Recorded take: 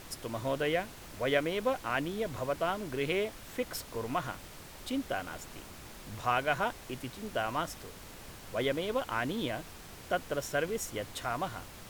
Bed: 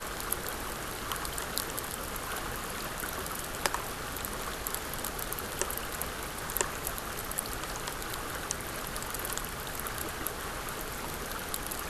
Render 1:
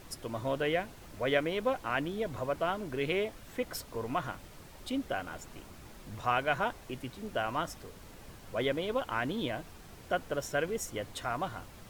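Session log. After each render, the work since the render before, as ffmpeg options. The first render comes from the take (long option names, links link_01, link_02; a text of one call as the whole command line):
ffmpeg -i in.wav -af "afftdn=noise_reduction=6:noise_floor=-49" out.wav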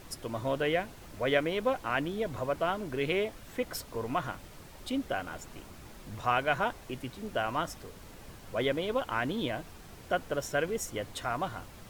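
ffmpeg -i in.wav -af "volume=1.5dB" out.wav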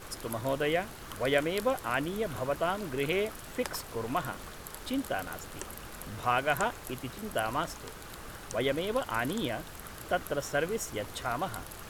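ffmpeg -i in.wav -i bed.wav -filter_complex "[1:a]volume=-10dB[link_01];[0:a][link_01]amix=inputs=2:normalize=0" out.wav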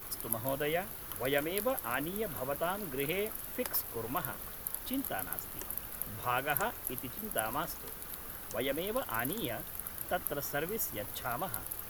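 ffmpeg -i in.wav -filter_complex "[0:a]flanger=delay=0.9:depth=3.4:regen=-77:speed=0.19:shape=sinusoidal,acrossover=split=120[link_01][link_02];[link_02]aexciter=amount=7.3:drive=6.1:freq=11000[link_03];[link_01][link_03]amix=inputs=2:normalize=0" out.wav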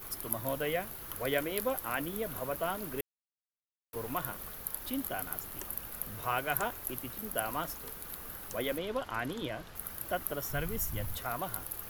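ffmpeg -i in.wav -filter_complex "[0:a]asettb=1/sr,asplit=3[link_01][link_02][link_03];[link_01]atrim=end=8.784[link_04];[link_02]atrim=start=8.78:end=9.76,asetpts=PTS-STARTPTS,afade=type=in:duration=0.004:curve=qsin,afade=type=out:start_time=0.976:duration=0.004:curve=qsin,lowpass=6000[link_05];[link_03]atrim=start=9.756[link_06];[link_04][link_05]acrossfade=duration=0.004:curve1=hsin:curve2=qsin[link_07];[link_07][link_06]acrossfade=duration=0.004:curve1=qsin:curve2=hsin,asplit=3[link_08][link_09][link_10];[link_08]afade=type=out:start_time=10.49:duration=0.02[link_11];[link_09]asubboost=boost=5.5:cutoff=140,afade=type=in:start_time=10.49:duration=0.02,afade=type=out:start_time=11.16:duration=0.02[link_12];[link_10]afade=type=in:start_time=11.16:duration=0.02[link_13];[link_11][link_12][link_13]amix=inputs=3:normalize=0,asplit=3[link_14][link_15][link_16];[link_14]atrim=end=3.01,asetpts=PTS-STARTPTS,afade=type=out:start_time=3.006:duration=0.004:curve=hsin[link_17];[link_15]atrim=start=3.01:end=3.93,asetpts=PTS-STARTPTS,volume=0[link_18];[link_16]atrim=start=3.93,asetpts=PTS-STARTPTS,afade=type=in:duration=0.004:curve=hsin[link_19];[link_17][link_18][link_19]concat=n=3:v=0:a=1" out.wav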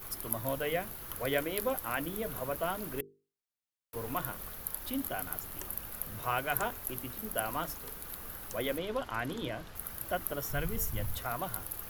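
ffmpeg -i in.wav -af "lowshelf=frequency=160:gain=3.5,bandreject=frequency=50:width_type=h:width=6,bandreject=frequency=100:width_type=h:width=6,bandreject=frequency=150:width_type=h:width=6,bandreject=frequency=200:width_type=h:width=6,bandreject=frequency=250:width_type=h:width=6,bandreject=frequency=300:width_type=h:width=6,bandreject=frequency=350:width_type=h:width=6,bandreject=frequency=400:width_type=h:width=6,bandreject=frequency=450:width_type=h:width=6" out.wav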